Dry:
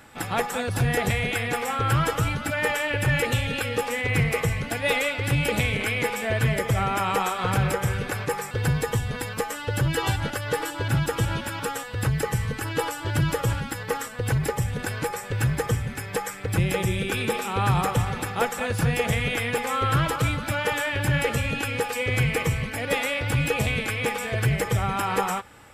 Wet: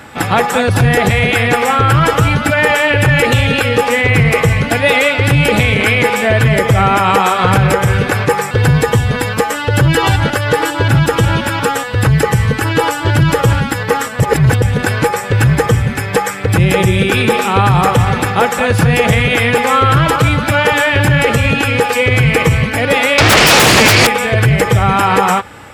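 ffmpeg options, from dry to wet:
-filter_complex "[0:a]asettb=1/sr,asplit=3[a][b][c];[a]atrim=end=23.184[d];[b]atrim=start=23.18:end=24.07,asetpts=PTS-STARTPTS,afade=t=in:d=0.004:c=qsin,afade=t=out:st=0.886:d=0.004:c=qsin,aeval=exprs='0.224*sin(PI/2*6.31*val(0)/0.224)':c=same[e];[c]atrim=start=24.066[f];[d][e]acrossfade=d=0.004:c1=hsin:c2=qsin[g];[g][f]acrossfade=d=0.004:c1=qsin:c2=hsin,asplit=3[h][i][j];[h]atrim=end=14.202[k];[i]atrim=start=14.198:end=14.622,asetpts=PTS-STARTPTS,areverse[l];[j]atrim=start=14.618[m];[k][l]acrossfade=d=0.004:c1=hsin:c2=hsin[n];[n][m]acrossfade=d=0.004:c1=hsin:c2=hsin,highpass=53,highshelf=f=5.5k:g=-7,alimiter=level_in=16.5dB:limit=-1dB:release=50:level=0:latency=1,volume=-1dB"

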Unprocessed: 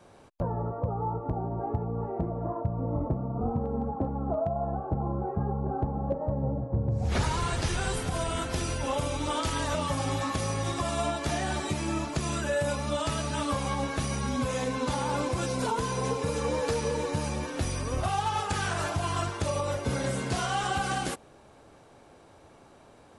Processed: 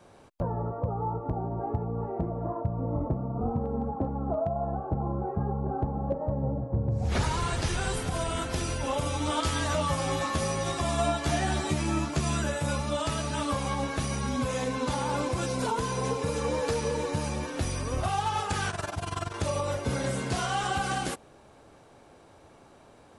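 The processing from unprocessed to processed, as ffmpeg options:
-filter_complex "[0:a]asettb=1/sr,asplit=3[a][b][c];[a]atrim=end=9.044[d];[b]atrim=start=9.04:end=12.82,asetpts=PTS-STARTPTS,afade=t=in:d=0.004:c=qsin,afade=t=out:st=3.776:d=0.004:c=qsin,asplit=2[e][f];[f]adelay=13,volume=-4dB[g];[e][g]amix=inputs=2:normalize=0,atrim=end_sample=166698[h];[c]atrim=start=12.816[i];[d][h]acrossfade=d=0.004:c1=hsin:c2=qsin[j];[j][i]acrossfade=d=0.004:c1=qsin:c2=hsin,asettb=1/sr,asplit=3[k][l][m];[k]atrim=end=18.704[n];[l]atrim=start=18.7:end=19.34,asetpts=PTS-STARTPTS,afade=t=in:d=0.004:c=qsin,afade=t=out:st=0.636:d=0.004:c=qsin,tremolo=f=21:d=0.857[o];[m]atrim=start=19.336[p];[n][o]acrossfade=d=0.004:c1=hsin:c2=qsin[q];[q][p]acrossfade=d=0.004:c1=qsin:c2=hsin"

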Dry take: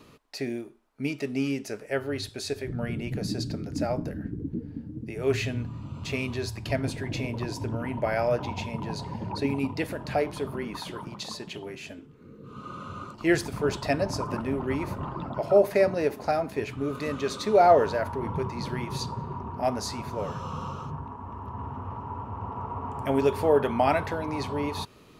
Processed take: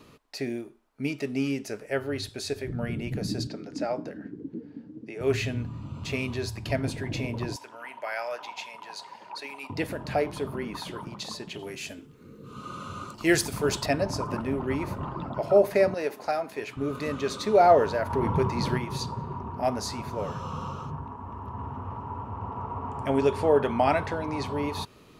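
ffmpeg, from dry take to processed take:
-filter_complex "[0:a]asettb=1/sr,asplit=3[a][b][c];[a]atrim=end=3.474[d];[b]atrim=start=3.47:end=5.21,asetpts=PTS-STARTPTS,afade=t=in:d=0.004:c=qsin,afade=t=out:st=1.736:d=0.004:c=qsin,highpass=280,lowpass=6.6k[e];[c]atrim=start=5.206[f];[d][e]acrossfade=d=0.004:c1=hsin:c2=qsin[g];[g][f]acrossfade=d=0.004:c1=qsin:c2=hsin,asettb=1/sr,asplit=3[h][i][j];[h]atrim=end=7.564[k];[i]atrim=start=7.56:end=9.7,asetpts=PTS-STARTPTS,afade=t=in:d=0.004:c=qsin,afade=t=out:st=2.136:d=0.004:c=qsin,highpass=970[l];[j]atrim=start=9.696[m];[k][l]acrossfade=d=0.004:c1=hsin:c2=qsin[n];[n][m]acrossfade=d=0.004:c1=qsin:c2=hsin,asettb=1/sr,asplit=3[o][p][q];[o]atrim=end=11.594[r];[p]atrim=start=11.59:end=13.86,asetpts=PTS-STARTPTS,afade=t=in:d=0.004:c=qsin,afade=t=out:st=2.266:d=0.004:c=qsin,highshelf=f=3.9k:g=11.5[s];[q]atrim=start=13.856[t];[r][s]acrossfade=d=0.004:c1=hsin:c2=qsin[u];[u][t]acrossfade=d=0.004:c1=qsin:c2=hsin,asettb=1/sr,asplit=3[v][w][x];[v]atrim=end=15.944[y];[w]atrim=start=15.94:end=16.77,asetpts=PTS-STARTPTS,afade=t=in:d=0.004:c=qsin,afade=t=out:st=0.826:d=0.004:c=qsin,highpass=f=540:p=1[z];[x]atrim=start=16.766[aa];[y][z]acrossfade=d=0.004:c1=hsin:c2=qsin[ab];[ab][aa]acrossfade=d=0.004:c1=qsin:c2=hsin,asettb=1/sr,asplit=3[ac][ad][ae];[ac]atrim=end=18.104[af];[ad]atrim=start=18.1:end=18.78,asetpts=PTS-STARTPTS,afade=t=in:d=0.004:c=qsin,afade=t=out:st=0.676:d=0.004:c=qsin,acontrast=32[ag];[ae]atrim=start=18.776[ah];[af][ag]acrossfade=d=0.004:c1=hsin:c2=qsin[ai];[ai][ah]acrossfade=d=0.004:c1=qsin:c2=hsin,asettb=1/sr,asplit=3[aj][ak][al];[aj]atrim=end=22.344[am];[ak]atrim=start=22.34:end=24.45,asetpts=PTS-STARTPTS,afade=t=in:d=0.004:c=qsin,afade=t=out:st=2.106:d=0.004:c=qsin,lowpass=f=10k:w=0.5412,lowpass=f=10k:w=1.3066[an];[al]atrim=start=24.446[ao];[am][an]acrossfade=d=0.004:c1=hsin:c2=qsin[ap];[ap][ao]acrossfade=d=0.004:c1=qsin:c2=hsin"

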